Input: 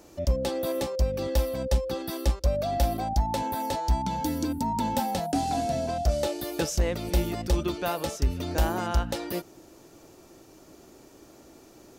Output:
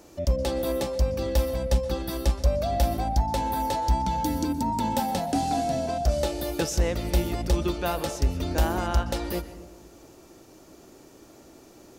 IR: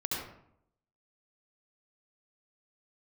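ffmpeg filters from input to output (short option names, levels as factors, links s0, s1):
-filter_complex "[0:a]asplit=2[s0][s1];[1:a]atrim=start_sample=2205,asetrate=24255,aresample=44100[s2];[s1][s2]afir=irnorm=-1:irlink=0,volume=0.1[s3];[s0][s3]amix=inputs=2:normalize=0"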